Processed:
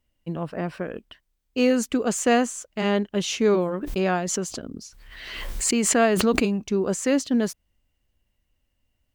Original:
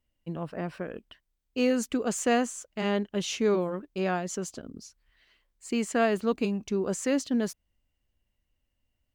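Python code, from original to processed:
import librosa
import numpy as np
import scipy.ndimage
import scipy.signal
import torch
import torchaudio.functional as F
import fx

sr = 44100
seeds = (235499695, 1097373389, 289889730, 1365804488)

y = fx.pre_swell(x, sr, db_per_s=37.0, at=(3.81, 6.58), fade=0.02)
y = y * librosa.db_to_amplitude(5.0)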